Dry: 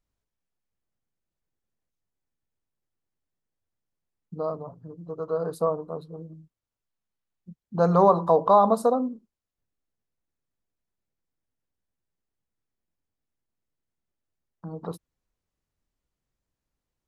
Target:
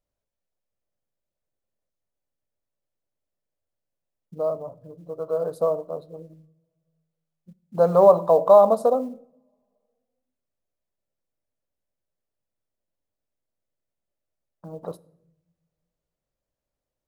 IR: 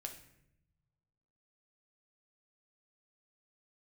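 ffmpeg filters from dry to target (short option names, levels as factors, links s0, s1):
-filter_complex "[0:a]acrusher=bits=8:mode=log:mix=0:aa=0.000001,equalizer=f=580:t=o:w=0.58:g=12,asplit=2[s0][s1];[1:a]atrim=start_sample=2205[s2];[s1][s2]afir=irnorm=-1:irlink=0,volume=0.447[s3];[s0][s3]amix=inputs=2:normalize=0,volume=0.501"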